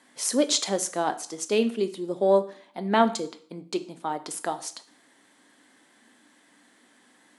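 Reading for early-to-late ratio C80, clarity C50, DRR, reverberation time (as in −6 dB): 19.5 dB, 15.5 dB, 9.5 dB, 0.50 s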